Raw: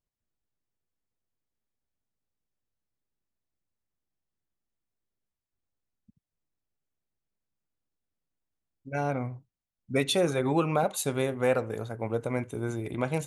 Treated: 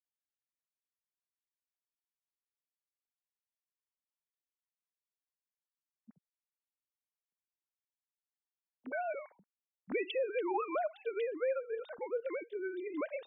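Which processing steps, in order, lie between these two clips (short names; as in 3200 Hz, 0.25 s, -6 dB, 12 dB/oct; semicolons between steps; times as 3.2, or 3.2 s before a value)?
sine-wave speech; compressor 4:1, threshold -26 dBFS, peak gain reduction 8 dB; gain -5 dB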